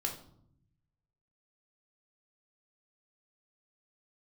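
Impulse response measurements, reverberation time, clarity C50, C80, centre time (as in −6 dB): 0.70 s, 8.5 dB, 12.5 dB, 19 ms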